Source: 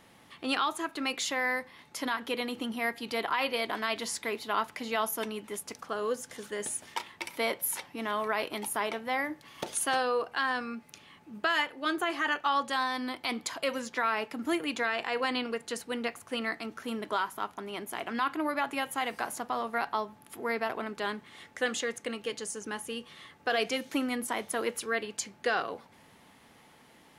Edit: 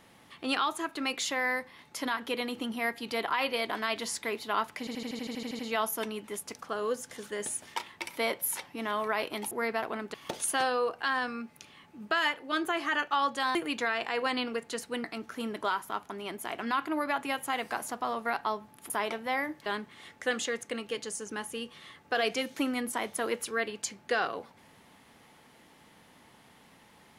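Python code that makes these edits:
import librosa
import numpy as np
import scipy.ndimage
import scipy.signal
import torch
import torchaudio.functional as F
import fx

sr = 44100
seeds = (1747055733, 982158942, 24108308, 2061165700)

y = fx.edit(x, sr, fx.stutter(start_s=4.79, slice_s=0.08, count=11),
    fx.swap(start_s=8.71, length_s=0.76, other_s=20.38, other_length_s=0.63),
    fx.cut(start_s=12.88, length_s=1.65),
    fx.cut(start_s=16.02, length_s=0.5), tone=tone)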